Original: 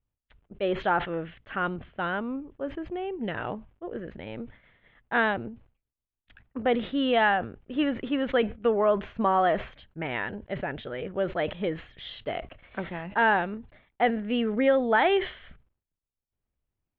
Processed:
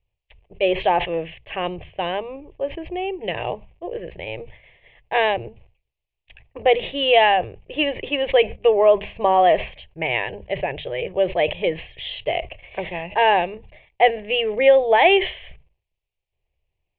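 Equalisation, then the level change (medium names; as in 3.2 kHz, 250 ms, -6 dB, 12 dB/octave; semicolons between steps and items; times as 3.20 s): resonant low-pass 2.6 kHz, resonance Q 3.2; hum notches 50/100/150/200 Hz; static phaser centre 580 Hz, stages 4; +9.0 dB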